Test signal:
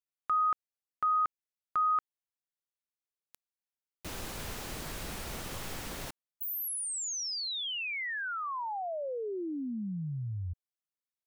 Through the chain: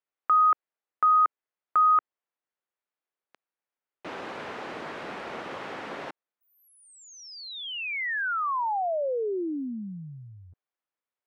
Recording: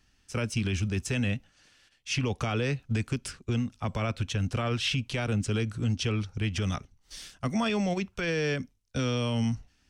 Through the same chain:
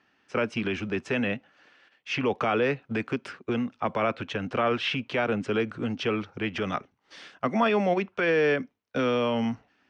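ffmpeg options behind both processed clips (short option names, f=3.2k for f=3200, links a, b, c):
-af "highpass=320,lowpass=2k,volume=8.5dB"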